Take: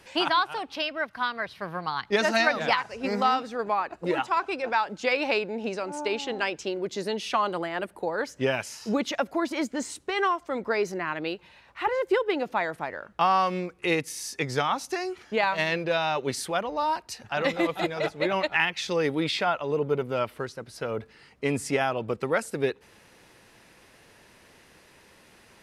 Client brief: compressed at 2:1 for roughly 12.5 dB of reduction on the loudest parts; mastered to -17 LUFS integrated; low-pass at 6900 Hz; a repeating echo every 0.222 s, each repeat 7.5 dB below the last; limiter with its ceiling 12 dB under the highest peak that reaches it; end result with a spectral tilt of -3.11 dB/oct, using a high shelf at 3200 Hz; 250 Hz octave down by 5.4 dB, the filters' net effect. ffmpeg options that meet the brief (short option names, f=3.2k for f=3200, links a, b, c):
-af "lowpass=6.9k,equalizer=f=250:t=o:g=-8,highshelf=f=3.2k:g=3,acompressor=threshold=-42dB:ratio=2,alimiter=level_in=8dB:limit=-24dB:level=0:latency=1,volume=-8dB,aecho=1:1:222|444|666|888|1110:0.422|0.177|0.0744|0.0312|0.0131,volume=24.5dB"